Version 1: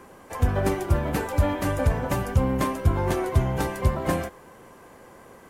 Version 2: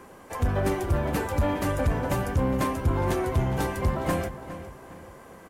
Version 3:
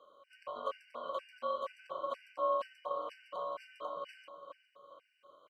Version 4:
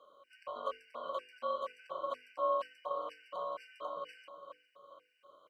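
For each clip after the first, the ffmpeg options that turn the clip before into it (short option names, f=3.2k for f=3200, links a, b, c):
-filter_complex "[0:a]asoftclip=type=tanh:threshold=-16.5dB,asplit=2[a][b];[b]adelay=411,lowpass=f=4.2k:p=1,volume=-12.5dB,asplit=2[c][d];[d]adelay=411,lowpass=f=4.2k:p=1,volume=0.42,asplit=2[e][f];[f]adelay=411,lowpass=f=4.2k:p=1,volume=0.42,asplit=2[g][h];[h]adelay=411,lowpass=f=4.2k:p=1,volume=0.42[i];[a][c][e][g][i]amix=inputs=5:normalize=0"
-filter_complex "[0:a]asplit=3[a][b][c];[a]bandpass=f=270:t=q:w=8,volume=0dB[d];[b]bandpass=f=2.29k:t=q:w=8,volume=-6dB[e];[c]bandpass=f=3.01k:t=q:w=8,volume=-9dB[f];[d][e][f]amix=inputs=3:normalize=0,aeval=exprs='val(0)*sin(2*PI*830*n/s)':c=same,afftfilt=real='re*gt(sin(2*PI*2.1*pts/sr)*(1-2*mod(floor(b*sr/1024/1500),2)),0)':imag='im*gt(sin(2*PI*2.1*pts/sr)*(1-2*mod(floor(b*sr/1024/1500),2)),0)':win_size=1024:overlap=0.75,volume=3dB"
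-af "bandreject=f=50:t=h:w=6,bandreject=f=100:t=h:w=6,bandreject=f=150:t=h:w=6,bandreject=f=200:t=h:w=6,bandreject=f=250:t=h:w=6,bandreject=f=300:t=h:w=6,bandreject=f=350:t=h:w=6,bandreject=f=400:t=h:w=6,bandreject=f=450:t=h:w=6,bandreject=f=500:t=h:w=6"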